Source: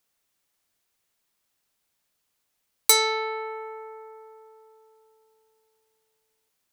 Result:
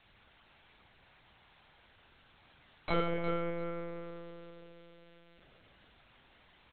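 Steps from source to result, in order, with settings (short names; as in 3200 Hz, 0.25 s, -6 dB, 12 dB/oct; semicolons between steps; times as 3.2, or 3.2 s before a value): high shelf 2700 Hz -8.5 dB; added noise white -53 dBFS; doubler 37 ms -5 dB; feedback echo 0.35 s, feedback 18%, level -10.5 dB; on a send at -1.5 dB: reverb RT60 1.4 s, pre-delay 4 ms; on the sum: monotone LPC vocoder at 8 kHz 170 Hz; gain -7 dB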